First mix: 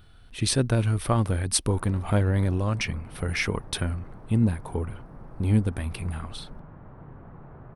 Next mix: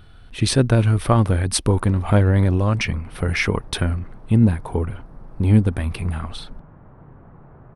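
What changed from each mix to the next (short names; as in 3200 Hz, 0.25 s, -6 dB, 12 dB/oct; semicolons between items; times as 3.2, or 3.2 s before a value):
speech +7.0 dB; master: add high shelf 4700 Hz -7 dB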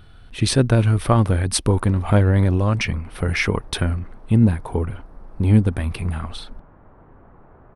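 background: add bell 140 Hz -10 dB 0.97 oct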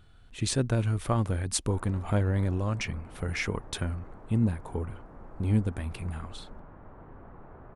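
speech -10.5 dB; master: add bell 7100 Hz +12.5 dB 0.28 oct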